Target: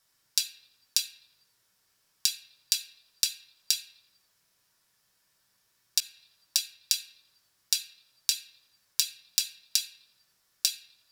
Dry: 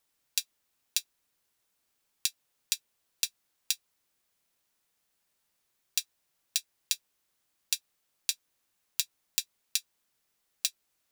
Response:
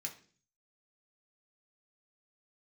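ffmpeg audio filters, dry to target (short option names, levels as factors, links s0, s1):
-filter_complex "[0:a]acompressor=threshold=0.0447:ratio=6[s0];[1:a]atrim=start_sample=2205,asetrate=30870,aresample=44100[s1];[s0][s1]afir=irnorm=-1:irlink=0,asettb=1/sr,asplit=3[s2][s3][s4];[s2]atrim=end=6.004[s5];[s3]atrim=start=6:end=6.94,asetpts=PTS-STARTPTS,afade=t=in:d=0.004:c=qsin,afade=t=out:st=0.936:d=0.004:c=qsin,adynamicequalizer=threshold=0.00224:dfrequency=1900:dqfactor=0.7:tfrequency=1900:tqfactor=0.7:attack=5:release=100:ratio=0.375:range=2.5:mode=cutabove:tftype=highshelf[s6];[s4]atrim=start=6.936[s7];[s5][s6]acrossfade=d=0.004:c1=hsin:c2=qsin[s8];[s8][s7]acrossfade=d=0.004:c1=qsin:c2=hsin,volume=2.11"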